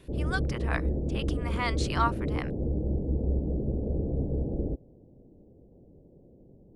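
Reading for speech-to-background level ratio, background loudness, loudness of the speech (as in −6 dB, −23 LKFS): −3.0 dB, −31.0 LKFS, −34.0 LKFS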